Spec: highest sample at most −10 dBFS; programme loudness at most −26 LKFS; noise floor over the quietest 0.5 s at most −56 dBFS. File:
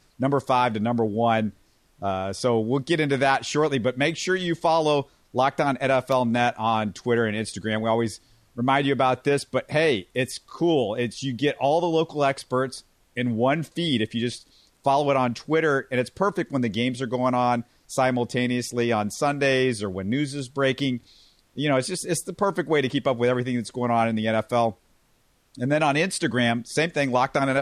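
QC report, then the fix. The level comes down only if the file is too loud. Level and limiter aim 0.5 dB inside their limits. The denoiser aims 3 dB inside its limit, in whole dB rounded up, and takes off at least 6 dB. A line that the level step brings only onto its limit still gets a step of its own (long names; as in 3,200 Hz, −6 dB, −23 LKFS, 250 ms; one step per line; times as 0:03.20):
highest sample −7.0 dBFS: out of spec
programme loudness −24.0 LKFS: out of spec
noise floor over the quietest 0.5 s −64 dBFS: in spec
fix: level −2.5 dB
brickwall limiter −10.5 dBFS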